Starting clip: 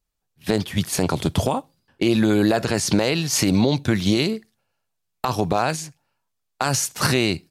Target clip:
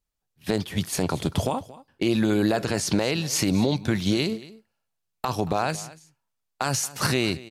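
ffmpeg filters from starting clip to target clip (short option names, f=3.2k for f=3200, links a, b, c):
-af "aecho=1:1:228:0.112,volume=-4dB"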